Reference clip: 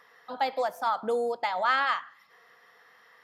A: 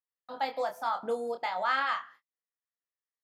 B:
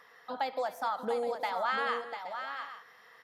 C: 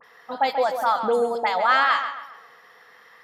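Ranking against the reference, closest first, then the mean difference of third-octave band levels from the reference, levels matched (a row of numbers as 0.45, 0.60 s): C, A, B; 3.0, 4.0, 6.0 dB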